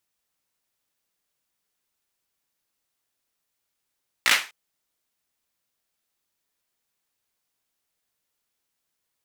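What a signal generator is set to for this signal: hand clap length 0.25 s, apart 17 ms, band 2000 Hz, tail 0.31 s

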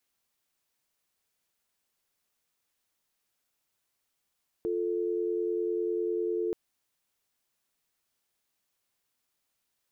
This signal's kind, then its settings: call progress tone dial tone, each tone -30 dBFS 1.88 s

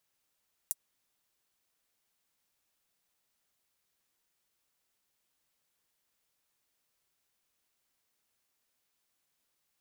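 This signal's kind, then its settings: closed hi-hat, high-pass 8300 Hz, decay 0.04 s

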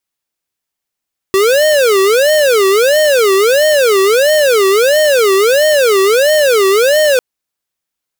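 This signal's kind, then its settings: siren wail 383–617 Hz 1.5/s square -9.5 dBFS 5.85 s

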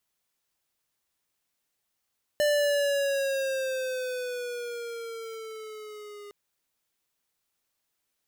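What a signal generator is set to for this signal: gliding synth tone square, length 3.91 s, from 594 Hz, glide -6.5 st, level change -21 dB, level -23 dB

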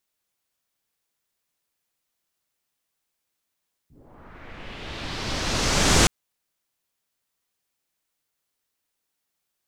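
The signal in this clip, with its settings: swept filtered noise pink, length 2.17 s lowpass, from 110 Hz, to 7500 Hz, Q 1.6, linear, gain ramp +36 dB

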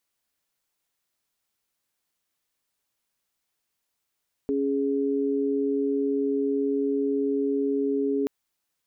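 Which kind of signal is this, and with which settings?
chord C#4/G#4 sine, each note -25 dBFS 3.78 s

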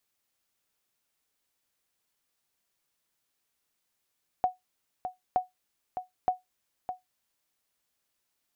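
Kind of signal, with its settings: sonar ping 736 Hz, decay 0.16 s, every 0.92 s, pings 3, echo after 0.61 s, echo -9 dB -16.5 dBFS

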